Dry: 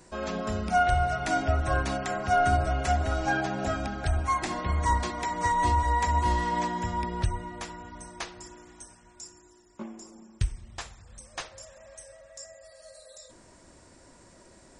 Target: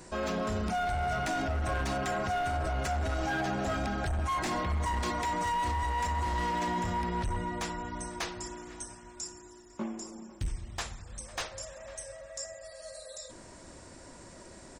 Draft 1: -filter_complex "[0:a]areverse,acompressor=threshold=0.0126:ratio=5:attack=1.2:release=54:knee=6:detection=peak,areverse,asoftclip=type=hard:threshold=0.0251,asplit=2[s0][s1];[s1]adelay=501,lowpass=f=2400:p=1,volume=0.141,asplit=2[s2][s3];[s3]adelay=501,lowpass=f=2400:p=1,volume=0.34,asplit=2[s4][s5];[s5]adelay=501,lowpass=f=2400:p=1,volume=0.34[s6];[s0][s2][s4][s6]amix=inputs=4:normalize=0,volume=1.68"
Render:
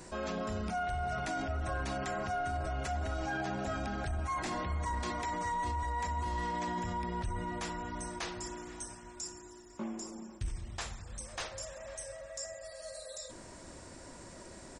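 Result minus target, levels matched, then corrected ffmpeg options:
compression: peak gain reduction +6 dB
-filter_complex "[0:a]areverse,acompressor=threshold=0.0299:ratio=5:attack=1.2:release=54:knee=6:detection=peak,areverse,asoftclip=type=hard:threshold=0.0251,asplit=2[s0][s1];[s1]adelay=501,lowpass=f=2400:p=1,volume=0.141,asplit=2[s2][s3];[s3]adelay=501,lowpass=f=2400:p=1,volume=0.34,asplit=2[s4][s5];[s5]adelay=501,lowpass=f=2400:p=1,volume=0.34[s6];[s0][s2][s4][s6]amix=inputs=4:normalize=0,volume=1.68"

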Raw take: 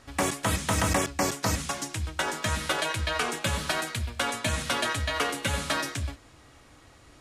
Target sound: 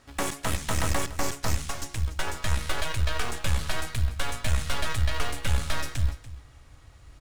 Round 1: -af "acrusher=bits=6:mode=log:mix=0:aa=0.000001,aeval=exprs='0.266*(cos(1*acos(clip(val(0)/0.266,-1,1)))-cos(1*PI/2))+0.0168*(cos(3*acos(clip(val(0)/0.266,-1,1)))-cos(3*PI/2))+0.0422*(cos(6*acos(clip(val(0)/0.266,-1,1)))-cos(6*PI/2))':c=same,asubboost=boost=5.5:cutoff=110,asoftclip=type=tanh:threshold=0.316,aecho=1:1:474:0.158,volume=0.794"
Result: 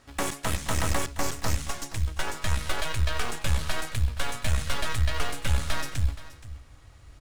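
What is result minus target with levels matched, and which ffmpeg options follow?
echo 185 ms late
-af "acrusher=bits=6:mode=log:mix=0:aa=0.000001,aeval=exprs='0.266*(cos(1*acos(clip(val(0)/0.266,-1,1)))-cos(1*PI/2))+0.0168*(cos(3*acos(clip(val(0)/0.266,-1,1)))-cos(3*PI/2))+0.0422*(cos(6*acos(clip(val(0)/0.266,-1,1)))-cos(6*PI/2))':c=same,asubboost=boost=5.5:cutoff=110,asoftclip=type=tanh:threshold=0.316,aecho=1:1:289:0.158,volume=0.794"

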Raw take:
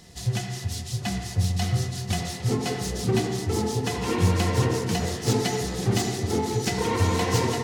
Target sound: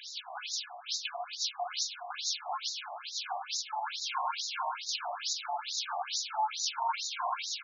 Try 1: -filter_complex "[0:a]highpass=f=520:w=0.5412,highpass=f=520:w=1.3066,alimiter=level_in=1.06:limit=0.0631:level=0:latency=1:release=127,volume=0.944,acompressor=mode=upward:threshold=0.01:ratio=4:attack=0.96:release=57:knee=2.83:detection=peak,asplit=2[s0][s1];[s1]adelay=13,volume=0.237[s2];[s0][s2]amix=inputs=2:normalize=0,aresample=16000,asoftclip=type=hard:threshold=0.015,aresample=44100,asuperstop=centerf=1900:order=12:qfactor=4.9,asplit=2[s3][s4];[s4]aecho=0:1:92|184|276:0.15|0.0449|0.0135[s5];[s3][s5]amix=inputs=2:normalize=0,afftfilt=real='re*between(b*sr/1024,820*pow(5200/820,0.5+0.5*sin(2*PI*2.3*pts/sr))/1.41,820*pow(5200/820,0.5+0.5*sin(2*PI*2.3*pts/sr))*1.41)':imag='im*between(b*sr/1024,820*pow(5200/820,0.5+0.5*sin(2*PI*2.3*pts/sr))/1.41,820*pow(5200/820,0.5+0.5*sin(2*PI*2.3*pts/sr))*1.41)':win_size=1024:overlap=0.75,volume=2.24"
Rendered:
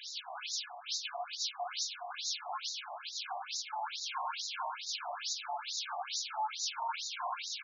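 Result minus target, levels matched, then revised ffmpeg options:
hard clipper: distortion +13 dB
-filter_complex "[0:a]highpass=f=520:w=0.5412,highpass=f=520:w=1.3066,alimiter=level_in=1.06:limit=0.0631:level=0:latency=1:release=127,volume=0.944,acompressor=mode=upward:threshold=0.01:ratio=4:attack=0.96:release=57:knee=2.83:detection=peak,asplit=2[s0][s1];[s1]adelay=13,volume=0.237[s2];[s0][s2]amix=inputs=2:normalize=0,aresample=16000,asoftclip=type=hard:threshold=0.0376,aresample=44100,asuperstop=centerf=1900:order=12:qfactor=4.9,asplit=2[s3][s4];[s4]aecho=0:1:92|184|276:0.15|0.0449|0.0135[s5];[s3][s5]amix=inputs=2:normalize=0,afftfilt=real='re*between(b*sr/1024,820*pow(5200/820,0.5+0.5*sin(2*PI*2.3*pts/sr))/1.41,820*pow(5200/820,0.5+0.5*sin(2*PI*2.3*pts/sr))*1.41)':imag='im*between(b*sr/1024,820*pow(5200/820,0.5+0.5*sin(2*PI*2.3*pts/sr))/1.41,820*pow(5200/820,0.5+0.5*sin(2*PI*2.3*pts/sr))*1.41)':win_size=1024:overlap=0.75,volume=2.24"

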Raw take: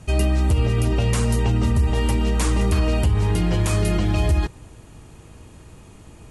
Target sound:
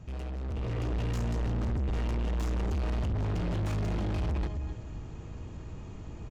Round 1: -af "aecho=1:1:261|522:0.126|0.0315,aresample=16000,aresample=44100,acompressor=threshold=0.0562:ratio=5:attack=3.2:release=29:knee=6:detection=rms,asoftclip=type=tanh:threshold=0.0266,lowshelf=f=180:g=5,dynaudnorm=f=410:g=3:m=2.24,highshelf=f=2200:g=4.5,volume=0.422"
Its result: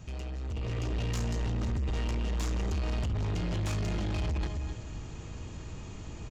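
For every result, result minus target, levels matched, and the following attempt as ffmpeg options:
compression: peak gain reduction +11 dB; 4 kHz band +6.0 dB
-af "aecho=1:1:261|522:0.126|0.0315,aresample=16000,aresample=44100,asoftclip=type=tanh:threshold=0.0266,lowshelf=f=180:g=5,dynaudnorm=f=410:g=3:m=2.24,highshelf=f=2200:g=4.5,volume=0.422"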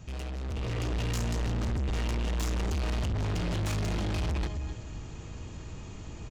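4 kHz band +7.5 dB
-af "aecho=1:1:261|522:0.126|0.0315,aresample=16000,aresample=44100,asoftclip=type=tanh:threshold=0.0266,lowshelf=f=180:g=5,dynaudnorm=f=410:g=3:m=2.24,highshelf=f=2200:g=-6.5,volume=0.422"

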